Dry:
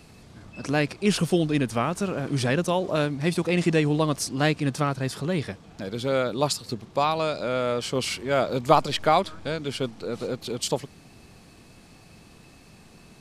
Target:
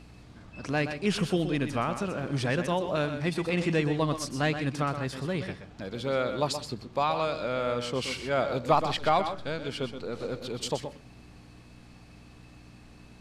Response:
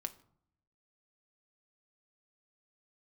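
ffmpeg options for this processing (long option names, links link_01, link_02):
-filter_complex "[0:a]lowshelf=frequency=170:gain=11.5,aeval=exprs='val(0)+0.0112*(sin(2*PI*60*n/s)+sin(2*PI*2*60*n/s)/2+sin(2*PI*3*60*n/s)/3+sin(2*PI*4*60*n/s)/4+sin(2*PI*5*60*n/s)/5)':channel_layout=same,asplit=2[link_01][link_02];[link_02]highpass=frequency=720:poles=1,volume=10dB,asoftclip=type=tanh:threshold=-2dB[link_03];[link_01][link_03]amix=inputs=2:normalize=0,lowpass=frequency=3500:poles=1,volume=-6dB,asplit=2[link_04][link_05];[1:a]atrim=start_sample=2205,asetrate=66150,aresample=44100,adelay=124[link_06];[link_05][link_06]afir=irnorm=-1:irlink=0,volume=-3.5dB[link_07];[link_04][link_07]amix=inputs=2:normalize=0,volume=-7.5dB"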